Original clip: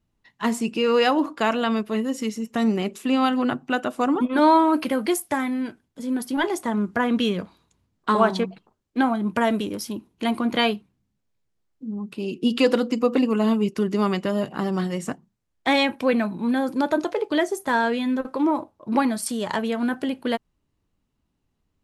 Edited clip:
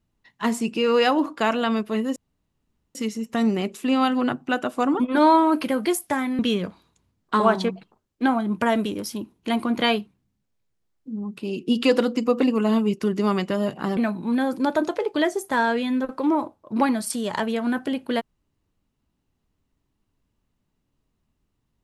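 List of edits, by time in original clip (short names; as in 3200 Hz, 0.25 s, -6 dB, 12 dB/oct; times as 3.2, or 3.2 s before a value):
2.16 insert room tone 0.79 s
5.6–7.14 cut
14.72–16.13 cut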